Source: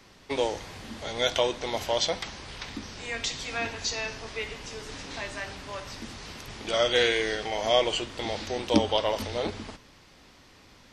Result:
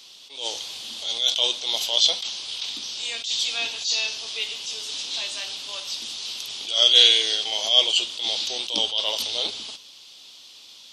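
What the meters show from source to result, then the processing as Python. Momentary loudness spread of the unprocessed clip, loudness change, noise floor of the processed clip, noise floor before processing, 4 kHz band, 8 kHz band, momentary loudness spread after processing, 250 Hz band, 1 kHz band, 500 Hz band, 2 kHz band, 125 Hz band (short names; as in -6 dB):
15 LU, +7.5 dB, -47 dBFS, -55 dBFS, +12.5 dB, +8.5 dB, 14 LU, -13.0 dB, -6.5 dB, -8.0 dB, -0.5 dB, under -15 dB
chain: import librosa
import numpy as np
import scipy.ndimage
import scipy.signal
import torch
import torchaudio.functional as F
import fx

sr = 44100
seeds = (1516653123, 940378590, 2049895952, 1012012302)

y = fx.highpass(x, sr, hz=860.0, slope=6)
y = fx.high_shelf_res(y, sr, hz=2500.0, db=10.0, q=3.0)
y = fx.attack_slew(y, sr, db_per_s=110.0)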